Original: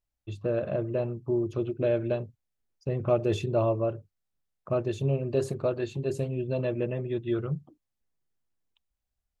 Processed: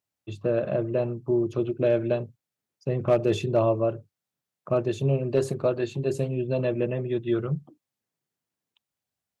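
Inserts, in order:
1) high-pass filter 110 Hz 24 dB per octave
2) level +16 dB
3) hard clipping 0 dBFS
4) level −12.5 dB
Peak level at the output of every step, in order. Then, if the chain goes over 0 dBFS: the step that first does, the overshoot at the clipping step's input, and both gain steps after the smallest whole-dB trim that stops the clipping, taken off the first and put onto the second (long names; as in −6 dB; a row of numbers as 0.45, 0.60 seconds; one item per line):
−12.5, +3.5, 0.0, −12.5 dBFS
step 2, 3.5 dB
step 2 +12 dB, step 4 −8.5 dB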